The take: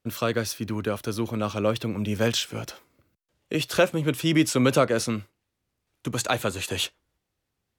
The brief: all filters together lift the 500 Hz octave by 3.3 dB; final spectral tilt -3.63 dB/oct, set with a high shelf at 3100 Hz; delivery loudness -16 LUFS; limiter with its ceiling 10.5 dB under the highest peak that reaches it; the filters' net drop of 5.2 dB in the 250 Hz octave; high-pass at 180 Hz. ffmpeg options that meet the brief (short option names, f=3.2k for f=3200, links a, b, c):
-af "highpass=180,equalizer=f=250:t=o:g=-8,equalizer=f=500:t=o:g=5.5,highshelf=f=3.1k:g=3.5,volume=12.5dB,alimiter=limit=-4dB:level=0:latency=1"